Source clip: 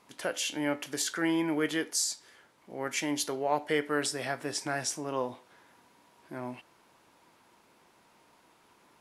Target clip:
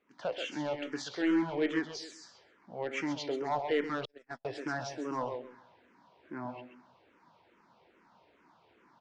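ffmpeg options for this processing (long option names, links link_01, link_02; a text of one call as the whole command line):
ffmpeg -i in.wav -filter_complex "[0:a]aemphasis=mode=reproduction:type=75fm,dynaudnorm=framelen=120:gausssize=3:maxgain=10dB,lowshelf=frequency=78:gain=-6,asoftclip=type=hard:threshold=-13.5dB,aecho=1:1:132|264|396:0.422|0.118|0.0331,asettb=1/sr,asplit=3[link_01][link_02][link_03];[link_01]atrim=end=4.054[link_04];[link_02]atrim=start=4.05:end=4.45,asetpts=PTS-STARTPTS,afade=type=in:duration=0.004:curve=qsin,afade=type=out:start_time=0.396:duration=0.004:curve=qsin,agate=range=-51dB:threshold=-20dB:ratio=16:detection=peak[link_05];[link_03]atrim=start=4.446[link_06];[link_04][link_05]acrossfade=duration=0.004:curve1=hsin:curve2=qsin[link_07];[link_07][link_06]acrossfade=duration=0.004:curve1=qsin:curve2=hsin,lowpass=frequency=6000:width=0.5412,lowpass=frequency=6000:width=1.3066,asplit=2[link_08][link_09];[link_09]afreqshift=-2.4[link_10];[link_08][link_10]amix=inputs=2:normalize=1,volume=-9dB" out.wav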